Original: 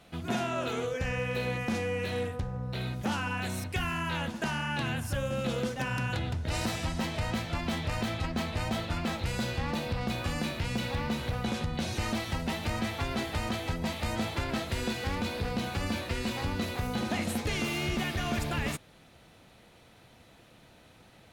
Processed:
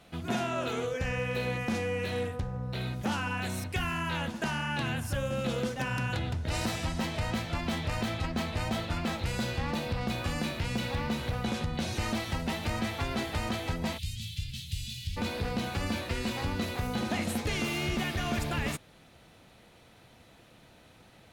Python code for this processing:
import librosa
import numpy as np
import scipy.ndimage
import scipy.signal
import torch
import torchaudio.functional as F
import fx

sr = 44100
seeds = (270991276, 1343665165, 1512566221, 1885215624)

y = fx.ellip_bandstop(x, sr, low_hz=140.0, high_hz=3100.0, order=3, stop_db=80, at=(13.97, 15.16), fade=0.02)